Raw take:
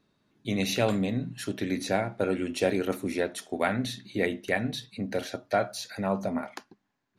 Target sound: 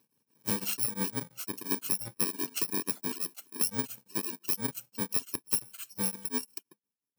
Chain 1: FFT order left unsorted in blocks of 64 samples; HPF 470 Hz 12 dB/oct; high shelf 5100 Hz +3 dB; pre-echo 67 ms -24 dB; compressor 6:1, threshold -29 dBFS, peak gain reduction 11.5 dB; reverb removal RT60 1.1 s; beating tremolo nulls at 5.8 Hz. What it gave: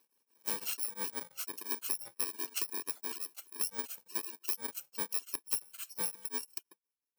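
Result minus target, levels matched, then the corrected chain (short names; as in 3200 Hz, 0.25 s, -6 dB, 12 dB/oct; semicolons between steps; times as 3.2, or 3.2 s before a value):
125 Hz band -15.5 dB; compressor: peak gain reduction +6 dB
FFT order left unsorted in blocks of 64 samples; HPF 140 Hz 12 dB/oct; high shelf 5100 Hz +3 dB; pre-echo 67 ms -24 dB; compressor 6:1, threshold -22 dBFS, peak gain reduction 5.5 dB; reverb removal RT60 1.1 s; beating tremolo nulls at 5.8 Hz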